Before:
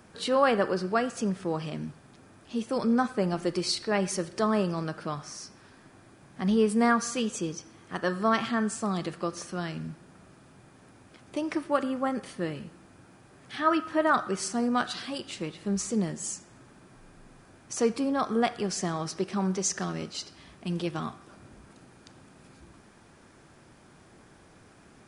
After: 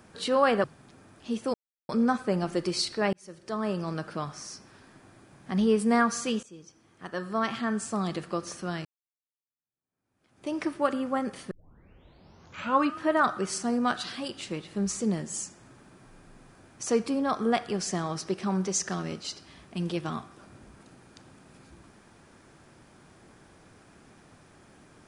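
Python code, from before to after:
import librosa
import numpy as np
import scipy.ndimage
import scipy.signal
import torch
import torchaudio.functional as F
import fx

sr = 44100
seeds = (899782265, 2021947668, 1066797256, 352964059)

y = fx.edit(x, sr, fx.cut(start_s=0.64, length_s=1.25),
    fx.insert_silence(at_s=2.79, length_s=0.35),
    fx.fade_in_span(start_s=4.03, length_s=0.87),
    fx.fade_in_from(start_s=7.33, length_s=1.57, floor_db=-20.0),
    fx.fade_in_span(start_s=9.75, length_s=1.67, curve='exp'),
    fx.tape_start(start_s=12.41, length_s=1.47), tone=tone)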